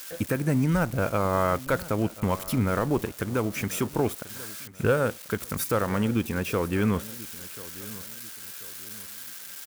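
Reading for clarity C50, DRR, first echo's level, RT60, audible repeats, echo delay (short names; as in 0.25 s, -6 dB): none, none, -18.5 dB, none, 2, 1.038 s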